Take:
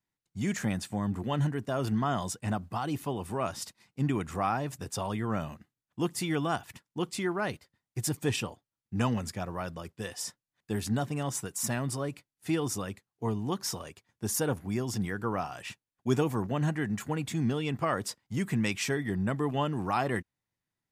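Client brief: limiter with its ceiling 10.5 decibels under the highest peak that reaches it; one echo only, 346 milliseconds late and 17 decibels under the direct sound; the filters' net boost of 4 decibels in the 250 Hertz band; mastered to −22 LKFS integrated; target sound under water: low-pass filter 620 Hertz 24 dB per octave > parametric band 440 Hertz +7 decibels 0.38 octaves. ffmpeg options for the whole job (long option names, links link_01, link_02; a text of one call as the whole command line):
ffmpeg -i in.wav -af "equalizer=frequency=250:width_type=o:gain=4.5,alimiter=limit=-21.5dB:level=0:latency=1,lowpass=frequency=620:width=0.5412,lowpass=frequency=620:width=1.3066,equalizer=frequency=440:width_type=o:width=0.38:gain=7,aecho=1:1:346:0.141,volume=10.5dB" out.wav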